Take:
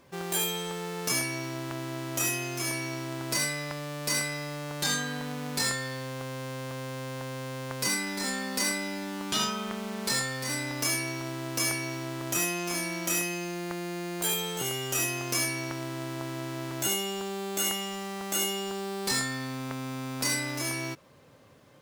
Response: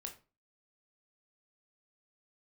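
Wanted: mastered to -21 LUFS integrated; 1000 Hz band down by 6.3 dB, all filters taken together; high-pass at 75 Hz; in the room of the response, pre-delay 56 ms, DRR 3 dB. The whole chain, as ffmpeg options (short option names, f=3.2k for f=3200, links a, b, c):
-filter_complex "[0:a]highpass=75,equalizer=f=1k:t=o:g=-8.5,asplit=2[a][b];[1:a]atrim=start_sample=2205,adelay=56[c];[b][c]afir=irnorm=-1:irlink=0,volume=0.5dB[d];[a][d]amix=inputs=2:normalize=0,volume=8.5dB"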